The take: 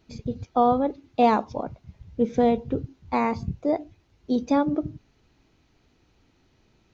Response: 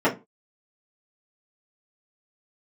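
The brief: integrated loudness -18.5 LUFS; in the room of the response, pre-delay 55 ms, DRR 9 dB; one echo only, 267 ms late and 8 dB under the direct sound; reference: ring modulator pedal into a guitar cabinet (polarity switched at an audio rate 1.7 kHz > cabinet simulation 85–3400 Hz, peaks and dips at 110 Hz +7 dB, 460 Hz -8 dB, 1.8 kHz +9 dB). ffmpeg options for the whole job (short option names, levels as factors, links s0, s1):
-filter_complex "[0:a]aecho=1:1:267:0.398,asplit=2[s0][s1];[1:a]atrim=start_sample=2205,adelay=55[s2];[s1][s2]afir=irnorm=-1:irlink=0,volume=0.0473[s3];[s0][s3]amix=inputs=2:normalize=0,aeval=exprs='val(0)*sgn(sin(2*PI*1700*n/s))':c=same,highpass=85,equalizer=f=110:t=q:w=4:g=7,equalizer=f=460:t=q:w=4:g=-8,equalizer=f=1800:t=q:w=4:g=9,lowpass=f=3400:w=0.5412,lowpass=f=3400:w=1.3066,volume=1.06"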